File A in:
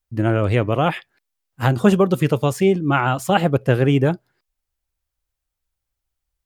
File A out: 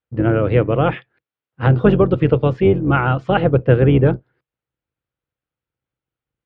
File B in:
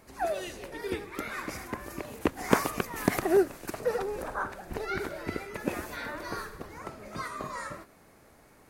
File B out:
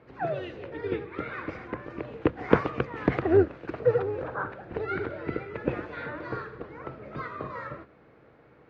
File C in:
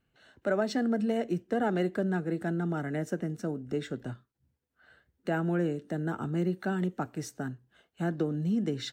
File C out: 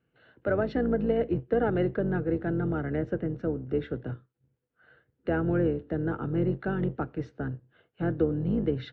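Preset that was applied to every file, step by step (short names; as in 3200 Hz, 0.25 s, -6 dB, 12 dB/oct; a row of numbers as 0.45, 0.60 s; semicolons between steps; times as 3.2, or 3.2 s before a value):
octaver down 2 oct, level +2 dB; speaker cabinet 100–3300 Hz, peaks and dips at 130 Hz +9 dB, 320 Hz +5 dB, 480 Hz +9 dB, 1400 Hz +4 dB; gain -2 dB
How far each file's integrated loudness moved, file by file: +2.5, +2.5, +2.5 LU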